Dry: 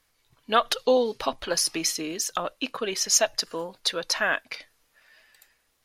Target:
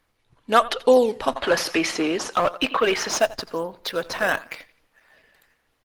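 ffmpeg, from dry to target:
-filter_complex "[0:a]bass=f=250:g=0,treble=f=4000:g=-10,aecho=1:1:86|172|258:0.106|0.036|0.0122,asplit=2[s0][s1];[s1]acrusher=samples=11:mix=1:aa=0.000001:lfo=1:lforange=17.6:lforate=1,volume=0.422[s2];[s0][s2]amix=inputs=2:normalize=0,asettb=1/sr,asplit=3[s3][s4][s5];[s3]atrim=end=1.364[s6];[s4]atrim=start=1.36:end=3.19,asetpts=PTS-STARTPTS,afade=t=in:d=0.004:c=qsin,afade=t=out:st=1.826:d=0.004:c=qsin,asplit=2[s7][s8];[s8]highpass=f=720:p=1,volume=7.94,asoftclip=type=tanh:threshold=0.282[s9];[s7][s9]amix=inputs=2:normalize=0,lowpass=f=2800:p=1,volume=0.501[s10];[s5]atrim=start=3.186[s11];[s6][s10]acrossfade=d=0.004:c1=hsin:c2=qsin[s12];[s12][s11]acrossfade=d=0.004:c1=qsin:c2=hsin,volume=1.33" -ar 48000 -c:a libopus -b:a 20k

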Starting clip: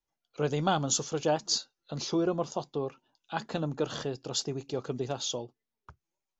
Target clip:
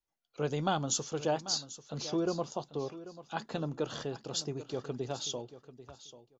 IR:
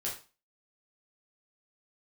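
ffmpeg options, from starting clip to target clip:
-af "aecho=1:1:790|1580:0.178|0.0302,volume=0.668"

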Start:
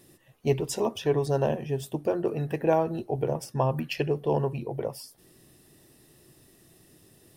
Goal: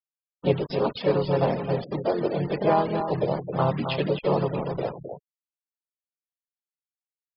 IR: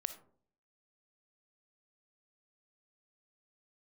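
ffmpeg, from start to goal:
-filter_complex "[0:a]asplit=4[s0][s1][s2][s3];[s1]asetrate=33038,aresample=44100,atempo=1.33484,volume=0.178[s4];[s2]asetrate=55563,aresample=44100,atempo=0.793701,volume=0.708[s5];[s3]asetrate=58866,aresample=44100,atempo=0.749154,volume=0.224[s6];[s0][s4][s5][s6]amix=inputs=4:normalize=0,aresample=11025,acrusher=bits=5:mix=0:aa=0.000001,aresample=44100,aecho=1:1:264:0.398,afftfilt=real='re*gte(hypot(re,im),0.02)':imag='im*gte(hypot(re,im),0.02)':win_size=1024:overlap=0.75"

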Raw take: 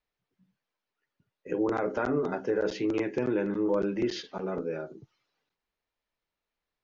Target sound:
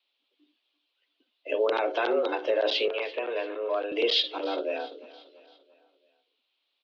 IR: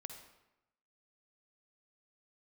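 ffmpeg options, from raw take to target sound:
-filter_complex "[0:a]highpass=f=170:t=q:w=0.5412,highpass=f=170:t=q:w=1.307,lowpass=f=3500:t=q:w=0.5176,lowpass=f=3500:t=q:w=0.7071,lowpass=f=3500:t=q:w=1.932,afreqshift=110,aexciter=amount=7.6:drive=8.2:freq=2800,asettb=1/sr,asplit=3[s0][s1][s2];[s0]atrim=end=2.884[s3];[s1]atrim=start=2.88:end=3.92,asetpts=PTS-STARTPTS,afade=t=in:d=0.004:c=qsin,afade=t=out:st=1.036:d=0.004:c=qsin,acrossover=split=590 2600:gain=0.251 1 0.0631[s4][s5][s6];[s4][s5][s6]amix=inputs=3:normalize=0[s7];[s2]atrim=start=3.916[s8];[s3][s7]acrossfade=d=0.004:c1=hsin:c2=qsin[s9];[s9][s8]acrossfade=d=0.004:c1=qsin:c2=hsin,asplit=2[s10][s11];[s11]aecho=0:1:340|680|1020|1360:0.112|0.0539|0.0259|0.0124[s12];[s10][s12]amix=inputs=2:normalize=0,volume=1.33"

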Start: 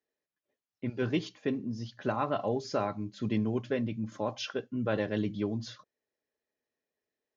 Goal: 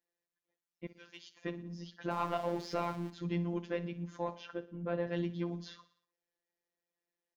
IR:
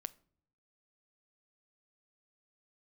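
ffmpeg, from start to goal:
-filter_complex "[0:a]asettb=1/sr,asplit=3[s0][s1][s2];[s0]atrim=end=2.114[s3];[s1]atrim=start=2.11:end=3.1,asetpts=PTS-STARTPTS,afade=t=in:d=0.004:c=qsin,afade=t=out:st=0.986:d=0.004:c=qsin,aeval=exprs='val(0)+0.5*0.0106*sgn(val(0))':c=same[s4];[s2]atrim=start=3.096[s5];[s3][s4]acrossfade=d=0.004:c1=hsin:c2=qsin[s6];[s6][s5]acrossfade=d=0.004:c1=qsin:c2=hsin,acrossover=split=5100[s7][s8];[s8]acompressor=threshold=0.00126:ratio=4:attack=1:release=60[s9];[s7][s9]amix=inputs=2:normalize=0,asettb=1/sr,asplit=3[s10][s11][s12];[s10]atrim=end=4.354[s13];[s11]atrim=start=4.35:end=5.07,asetpts=PTS-STARTPTS,afade=t=in:d=0.004:c=qsin,afade=t=out:st=0.716:d=0.004:c=qsin,equalizer=f=4800:w=0.42:g=-11[s14];[s12]atrim=start=5.066[s15];[s13][s14]acrossfade=d=0.004:c1=hsin:c2=qsin[s16];[s16][s15]acrossfade=d=0.004:c1=qsin:c2=hsin,asoftclip=type=tanh:threshold=0.119,asettb=1/sr,asplit=3[s17][s18][s19];[s17]atrim=end=0.864[s20];[s18]atrim=start=0.86:end=1.37,asetpts=PTS-STARTPTS,afade=t=in:d=0.004:c=qsin,afade=t=out:st=0.506:d=0.004:c=qsin,aderivative[s21];[s19]atrim=start=1.366[s22];[s20][s21]acrossfade=d=0.004:c1=hsin:c2=qsin[s23];[s23][s22]acrossfade=d=0.004:c1=qsin:c2=hsin,aecho=1:1:60|120|180|240|300:0.15|0.0808|0.0436|0.0236|0.0127,afftfilt=real='hypot(re,im)*cos(PI*b)':imag='0':win_size=1024:overlap=0.75"

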